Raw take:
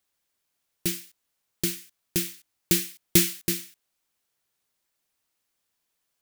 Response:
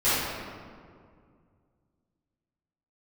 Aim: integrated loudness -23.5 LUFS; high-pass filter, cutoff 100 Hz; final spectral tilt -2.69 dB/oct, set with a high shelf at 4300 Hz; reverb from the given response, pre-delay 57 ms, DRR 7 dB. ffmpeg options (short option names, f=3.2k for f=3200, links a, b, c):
-filter_complex "[0:a]highpass=100,highshelf=f=4.3k:g=-3,asplit=2[a][b];[1:a]atrim=start_sample=2205,adelay=57[c];[b][c]afir=irnorm=-1:irlink=0,volume=-23.5dB[d];[a][d]amix=inputs=2:normalize=0,volume=4.5dB"